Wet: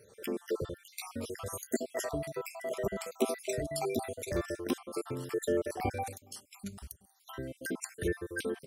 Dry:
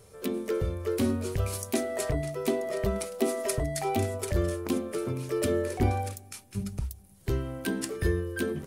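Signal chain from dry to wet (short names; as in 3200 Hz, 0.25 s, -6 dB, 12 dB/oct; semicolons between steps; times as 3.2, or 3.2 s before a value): random spectral dropouts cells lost 57%; HPF 270 Hz 6 dB/oct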